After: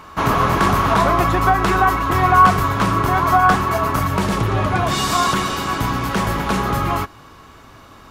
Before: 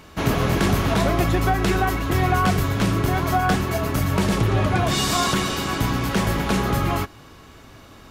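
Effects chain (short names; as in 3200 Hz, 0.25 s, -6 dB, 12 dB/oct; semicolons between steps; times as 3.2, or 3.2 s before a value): bell 1100 Hz +13.5 dB 0.96 oct, from 4.07 s +7 dB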